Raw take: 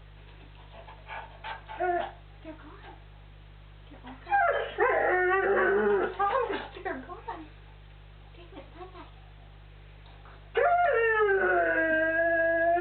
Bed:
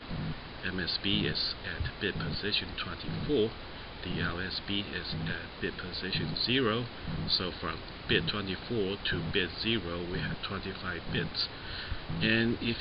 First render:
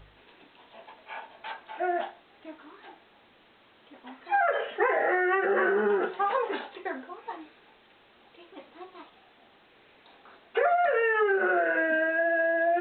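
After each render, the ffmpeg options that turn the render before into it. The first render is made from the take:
-af "bandreject=f=50:t=h:w=4,bandreject=f=100:t=h:w=4,bandreject=f=150:t=h:w=4"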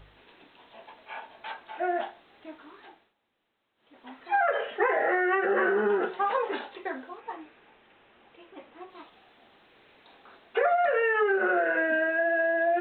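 -filter_complex "[0:a]asettb=1/sr,asplit=3[a][b][c];[a]atrim=end=7.204[d];[b]atrim=start=7.2:end=8.9,asetpts=PTS-STARTPTS,afade=t=in:d=0.004:c=qsin,afade=t=out:st=1.696:d=0.004:c=qsin,lowpass=f=3.2k:w=0.5412,lowpass=f=3.2k:w=1.3066[e];[c]atrim=start=8.896[f];[d][e]acrossfade=d=0.004:c1=hsin:c2=qsin[g];[g][f]acrossfade=d=0.004:c1=qsin:c2=hsin,asplit=3[h][i][j];[h]atrim=end=3.14,asetpts=PTS-STARTPTS,afade=t=out:st=2.79:d=0.35:silence=0.112202[k];[i]atrim=start=3.14:end=3.76,asetpts=PTS-STARTPTS,volume=-19dB[l];[j]atrim=start=3.76,asetpts=PTS-STARTPTS,afade=t=in:d=0.35:silence=0.112202[m];[k][l][m]concat=n=3:v=0:a=1"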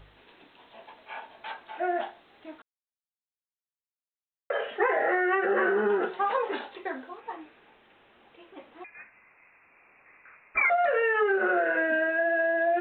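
-filter_complex "[0:a]asettb=1/sr,asplit=3[a][b][c];[a]atrim=end=8.844[d];[b]atrim=start=8.84:end=10.7,asetpts=PTS-STARTPTS,afade=t=in:d=0.004:c=qsin,afade=t=out:st=1.856:d=0.004:c=qsin,lowpass=f=2.4k:t=q:w=0.5098,lowpass=f=2.4k:t=q:w=0.6013,lowpass=f=2.4k:t=q:w=0.9,lowpass=f=2.4k:t=q:w=2.563,afreqshift=-2800[e];[c]atrim=start=10.696[f];[d][e]acrossfade=d=0.004:c1=hsin:c2=qsin[g];[g][f]acrossfade=d=0.004:c1=qsin:c2=hsin,asplit=3[h][i][j];[h]atrim=end=2.62,asetpts=PTS-STARTPTS,afade=t=out:st=2.616:d=0.004:c=hsin[k];[i]atrim=start=2.62:end=4.5,asetpts=PTS-STARTPTS,volume=0[l];[j]atrim=start=4.5,asetpts=PTS-STARTPTS,afade=t=in:d=0.004:c=hsin[m];[k][l][m]concat=n=3:v=0:a=1"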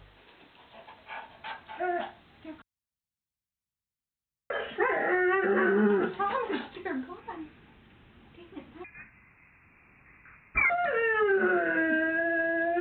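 -af "highpass=40,asubboost=boost=12:cutoff=160"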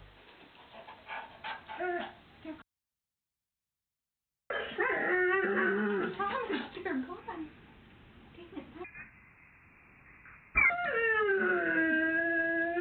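-filter_complex "[0:a]acrossover=split=410|1200[a][b][c];[a]alimiter=level_in=4.5dB:limit=-24dB:level=0:latency=1,volume=-4.5dB[d];[b]acompressor=threshold=-41dB:ratio=6[e];[d][e][c]amix=inputs=3:normalize=0"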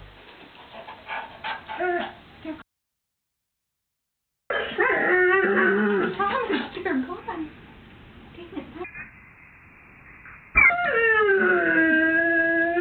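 -af "volume=9.5dB"

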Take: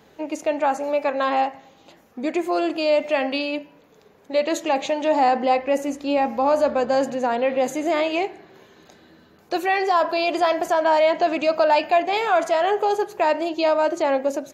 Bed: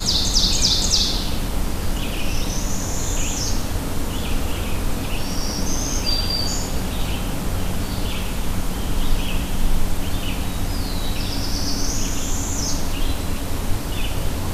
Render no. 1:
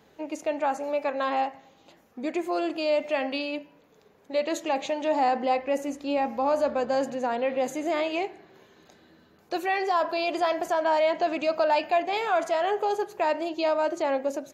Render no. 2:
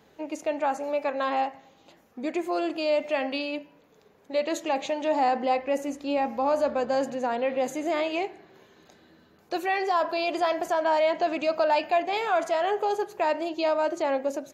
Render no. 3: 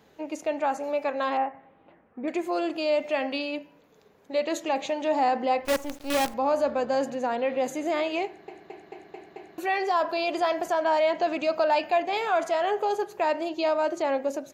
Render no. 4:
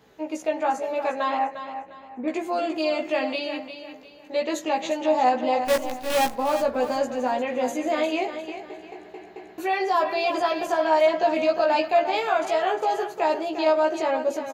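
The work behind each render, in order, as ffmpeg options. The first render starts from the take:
-af "volume=-5.5dB"
-af anull
-filter_complex "[0:a]asettb=1/sr,asplit=3[a][b][c];[a]atrim=end=1.374[d];[b]atrim=start=1.37:end=2.28,asetpts=PTS-STARTPTS,afade=t=in:d=0.004:c=qsin,afade=t=out:st=0.906:d=0.004:c=qsin,lowpass=f=2.2k:w=0.5412,lowpass=f=2.2k:w=1.3066[e];[c]atrim=start=2.276[f];[d][e]acrossfade=d=0.004:c1=hsin:c2=qsin[g];[g][f]acrossfade=d=0.004:c1=qsin:c2=hsin,asettb=1/sr,asplit=3[h][i][j];[h]atrim=end=5.654[k];[i]atrim=start=5.65:end=6.34,asetpts=PTS-STARTPTS,afade=t=in:d=0.004:c=qsin,afade=t=out:st=0.686:d=0.004:c=qsin,acrusher=bits=5:dc=4:mix=0:aa=0.000001[l];[j]atrim=start=6.336[m];[k][l]acrossfade=d=0.004:c1=hsin:c2=qsin[n];[n][m]acrossfade=d=0.004:c1=qsin:c2=hsin,asplit=7[o][p][q][r][s][t][u];[o]atrim=end=8.482[v];[p]atrim=start=8.258:end=8.482[w];[q]atrim=start=8.258:end=8.482[x];[r]atrim=start=8.258:end=8.482[y];[s]atrim=start=8.258:end=8.482[z];[t]atrim=start=8.258:end=8.482[aa];[u]atrim=start=9.578[ab];[v][w]acrossfade=d=0.004:c1=hsin:c2=hsin[ac];[ac][x]acrossfade=d=0.004:c1=hsin:c2=hsin[ad];[ad][y]acrossfade=d=0.004:c1=hsin:c2=hsin[ae];[ae][z]acrossfade=d=0.004:c1=hsin:c2=hsin[af];[af][aa]acrossfade=d=0.004:c1=hsin:c2=hsin[ag];[ag][ab]acrossfade=d=0.004:c1=hsin:c2=hsin"
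-filter_complex "[0:a]asplit=2[a][b];[b]adelay=16,volume=-2dB[c];[a][c]amix=inputs=2:normalize=0,aecho=1:1:352|704|1056|1408:0.316|0.101|0.0324|0.0104"

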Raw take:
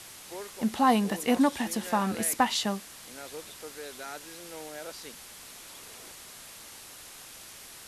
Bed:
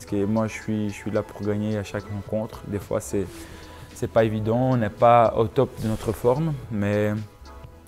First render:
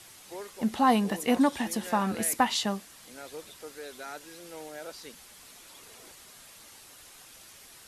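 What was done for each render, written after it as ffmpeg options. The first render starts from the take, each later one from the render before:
-af "afftdn=nr=6:nf=-48"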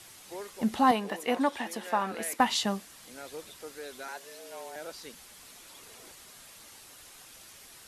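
-filter_complex "[0:a]asettb=1/sr,asplit=3[a][b][c];[a]atrim=end=0.914[d];[b]atrim=start=0.91:end=2.4,asetpts=PTS-STARTPTS,afade=t=in:d=0.004:c=qsin,afade=t=out:st=1.486:d=0.004:c=qsin,bass=f=250:g=-15,treble=f=4k:g=-7[e];[c]atrim=start=2.396[f];[d][e]acrossfade=d=0.004:c1=hsin:c2=qsin[g];[g][f]acrossfade=d=0.004:c1=qsin:c2=hsin,asettb=1/sr,asplit=3[h][i][j];[h]atrim=end=4.084[k];[i]atrim=start=4.08:end=4.76,asetpts=PTS-STARTPTS,afade=t=in:d=0.004:c=qsin,afade=t=out:st=0.676:d=0.004:c=qsin,afreqshift=120[l];[j]atrim=start=4.756[m];[k][l]acrossfade=d=0.004:c1=hsin:c2=qsin[n];[n][m]acrossfade=d=0.004:c1=qsin:c2=hsin"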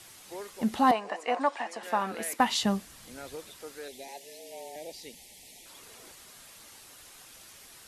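-filter_complex "[0:a]asettb=1/sr,asplit=3[a][b][c];[a]atrim=end=0.914[d];[b]atrim=start=0.91:end=1.83,asetpts=PTS-STARTPTS,afade=t=in:d=0.004:c=qsin,afade=t=out:st=0.916:d=0.004:c=qsin,highpass=390,equalizer=f=390:t=q:w=4:g=-4,equalizer=f=700:t=q:w=4:g=6,equalizer=f=1.1k:t=q:w=4:g=4,equalizer=f=3.5k:t=q:w=4:g=-9,equalizer=f=6k:t=q:w=4:g=-4,lowpass=f=7.8k:w=0.5412,lowpass=f=7.8k:w=1.3066[e];[c]atrim=start=1.826[f];[d][e]acrossfade=d=0.004:c1=hsin:c2=qsin[g];[g][f]acrossfade=d=0.004:c1=qsin:c2=hsin,asettb=1/sr,asplit=3[h][i][j];[h]atrim=end=2.614[k];[i]atrim=start=2.61:end=3.36,asetpts=PTS-STARTPTS,afade=t=in:d=0.004:c=qsin,afade=t=out:st=0.746:d=0.004:c=qsin,lowshelf=f=160:g=12[l];[j]atrim=start=3.356[m];[k][l]acrossfade=d=0.004:c1=hsin:c2=qsin[n];[n][m]acrossfade=d=0.004:c1=qsin:c2=hsin,asettb=1/sr,asplit=3[o][p][q];[o]atrim=end=3.884[r];[p]atrim=start=3.88:end=5.66,asetpts=PTS-STARTPTS,afade=t=in:d=0.004:c=qsin,afade=t=out:st=1.776:d=0.004:c=qsin,asuperstop=centerf=1300:order=8:qfactor=1.3[s];[q]atrim=start=5.656[t];[r][s]acrossfade=d=0.004:c1=hsin:c2=qsin[u];[u][t]acrossfade=d=0.004:c1=qsin:c2=hsin"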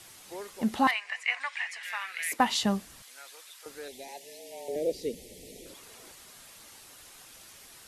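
-filter_complex "[0:a]asettb=1/sr,asplit=3[a][b][c];[a]atrim=end=0.874[d];[b]atrim=start=0.87:end=2.32,asetpts=PTS-STARTPTS,afade=t=in:d=0.004:c=qsin,afade=t=out:st=1.446:d=0.004:c=qsin,highpass=f=2.1k:t=q:w=3.9[e];[c]atrim=start=2.316[f];[d][e]acrossfade=d=0.004:c1=hsin:c2=qsin[g];[g][f]acrossfade=d=0.004:c1=qsin:c2=hsin,asettb=1/sr,asplit=3[h][i][j];[h]atrim=end=3.024[k];[i]atrim=start=3.02:end=3.66,asetpts=PTS-STARTPTS,afade=t=in:d=0.004:c=qsin,afade=t=out:st=0.636:d=0.004:c=qsin,highpass=1.2k[l];[j]atrim=start=3.656[m];[k][l]acrossfade=d=0.004:c1=hsin:c2=qsin[n];[n][m]acrossfade=d=0.004:c1=qsin:c2=hsin,asettb=1/sr,asplit=3[o][p][q];[o]atrim=end=4.684[r];[p]atrim=start=4.68:end=5.74,asetpts=PTS-STARTPTS,afade=t=in:d=0.004:c=qsin,afade=t=out:st=1.056:d=0.004:c=qsin,lowshelf=f=640:t=q:w=3:g=10.5[s];[q]atrim=start=5.736[t];[r][s]acrossfade=d=0.004:c1=hsin:c2=qsin[u];[u][t]acrossfade=d=0.004:c1=qsin:c2=hsin"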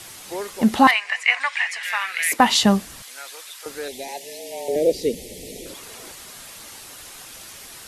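-af "volume=11dB,alimiter=limit=-3dB:level=0:latency=1"

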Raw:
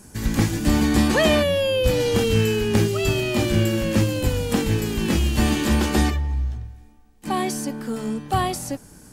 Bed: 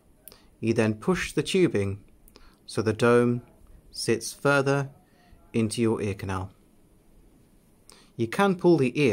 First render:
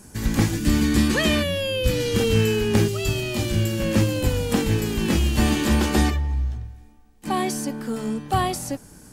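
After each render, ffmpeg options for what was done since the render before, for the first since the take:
-filter_complex "[0:a]asettb=1/sr,asplit=3[a][b][c];[a]atrim=end=0.564[d];[b]atrim=start=0.56:end=2.2,asetpts=PTS-STARTPTS,afade=t=in:d=0.004:c=qsin,afade=t=out:st=1.636:d=0.004:c=qsin,equalizer=f=740:t=o:w=0.88:g=-11.5[e];[c]atrim=start=2.196[f];[d][e]acrossfade=d=0.004:c1=hsin:c2=qsin[g];[g][f]acrossfade=d=0.004:c1=qsin:c2=hsin,asettb=1/sr,asplit=3[h][i][j];[h]atrim=end=2.884[k];[i]atrim=start=2.88:end=3.8,asetpts=PTS-STARTPTS,afade=t=in:d=0.004:c=qsin,afade=t=out:st=0.916:d=0.004:c=qsin,acrossover=split=150|3000[l][m][n];[m]acompressor=threshold=-35dB:ratio=1.5:attack=3.2:release=140:knee=2.83:detection=peak[o];[l][o][n]amix=inputs=3:normalize=0[p];[j]atrim=start=3.796[q];[k][p]acrossfade=d=0.004:c1=hsin:c2=qsin[r];[r][q]acrossfade=d=0.004:c1=qsin:c2=hsin"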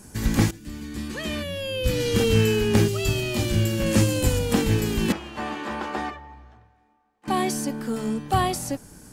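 -filter_complex "[0:a]asettb=1/sr,asplit=3[a][b][c];[a]atrim=end=3.864[d];[b]atrim=start=3.86:end=4.39,asetpts=PTS-STARTPTS,afade=t=in:d=0.004:c=qsin,afade=t=out:st=0.526:d=0.004:c=qsin,equalizer=f=8.5k:t=o:w=1.1:g=7[e];[c]atrim=start=4.386[f];[d][e]acrossfade=d=0.004:c1=hsin:c2=qsin[g];[g][f]acrossfade=d=0.004:c1=qsin:c2=hsin,asettb=1/sr,asplit=3[h][i][j];[h]atrim=end=5.124[k];[i]atrim=start=5.12:end=7.28,asetpts=PTS-STARTPTS,afade=t=in:d=0.004:c=qsin,afade=t=out:st=2.156:d=0.004:c=qsin,bandpass=f=1k:t=q:w=1.2[l];[j]atrim=start=7.276[m];[k][l]acrossfade=d=0.004:c1=hsin:c2=qsin[n];[n][m]acrossfade=d=0.004:c1=qsin:c2=hsin,asplit=2[o][p];[o]atrim=end=0.51,asetpts=PTS-STARTPTS,afade=t=out:st=0.506:d=0.004:c=hsin:silence=0.125893[q];[p]atrim=start=0.51,asetpts=PTS-STARTPTS,afade=t=in:d=1.59:c=qua:silence=0.125893[r];[q][r]concat=n=2:v=0:a=1"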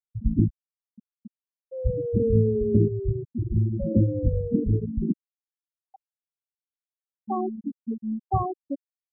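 -af "afftfilt=real='re*gte(hypot(re,im),0.355)':imag='im*gte(hypot(re,im),0.355)':win_size=1024:overlap=0.75,equalizer=f=2.3k:w=0.78:g=-10"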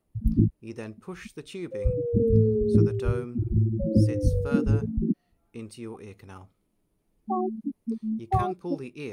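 -filter_complex "[1:a]volume=-14.5dB[a];[0:a][a]amix=inputs=2:normalize=0"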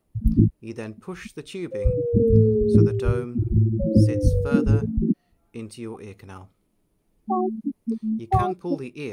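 -af "volume=4dB"

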